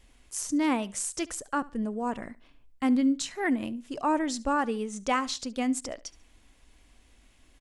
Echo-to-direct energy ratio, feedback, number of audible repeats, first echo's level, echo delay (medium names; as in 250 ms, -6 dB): -21.0 dB, 29%, 2, -21.5 dB, 71 ms